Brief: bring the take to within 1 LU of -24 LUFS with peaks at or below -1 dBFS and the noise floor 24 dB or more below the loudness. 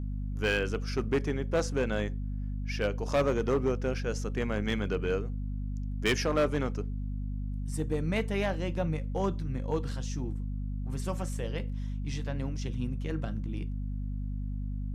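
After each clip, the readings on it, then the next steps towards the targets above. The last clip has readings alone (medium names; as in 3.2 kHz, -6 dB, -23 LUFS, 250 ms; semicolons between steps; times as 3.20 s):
clipped samples 0.7%; clipping level -21.0 dBFS; hum 50 Hz; highest harmonic 250 Hz; hum level -31 dBFS; loudness -32.5 LUFS; peak level -21.0 dBFS; loudness target -24.0 LUFS
-> clip repair -21 dBFS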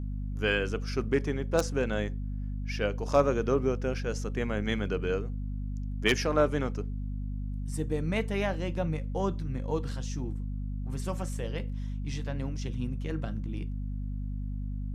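clipped samples 0.0%; hum 50 Hz; highest harmonic 250 Hz; hum level -31 dBFS
-> hum notches 50/100/150/200/250 Hz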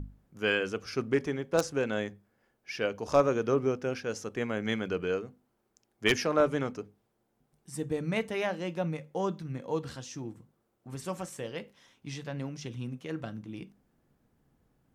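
hum not found; loudness -32.0 LUFS; peak level -11.0 dBFS; loudness target -24.0 LUFS
-> trim +8 dB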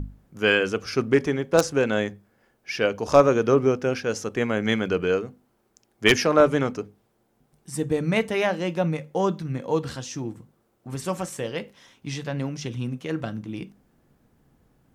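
loudness -24.0 LUFS; peak level -3.0 dBFS; noise floor -68 dBFS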